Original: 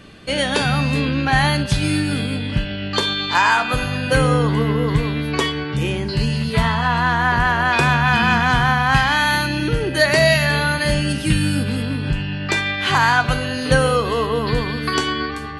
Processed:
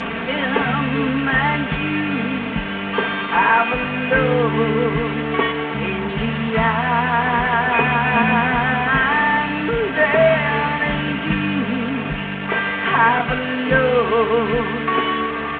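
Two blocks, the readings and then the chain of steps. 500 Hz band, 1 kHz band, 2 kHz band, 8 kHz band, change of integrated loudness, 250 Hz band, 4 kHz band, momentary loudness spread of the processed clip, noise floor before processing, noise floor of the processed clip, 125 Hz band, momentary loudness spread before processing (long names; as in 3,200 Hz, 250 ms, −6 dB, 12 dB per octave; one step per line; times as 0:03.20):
+2.5 dB, +1.0 dB, +0.5 dB, below −35 dB, 0.0 dB, +0.5 dB, −5.5 dB, 7 LU, −27 dBFS, −25 dBFS, −5.5 dB, 7 LU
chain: linear delta modulator 16 kbit/s, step −19 dBFS
high-pass filter 180 Hz 6 dB per octave
comb filter 4.4 ms, depth 88%
bit reduction 10 bits
high-frequency loss of the air 120 metres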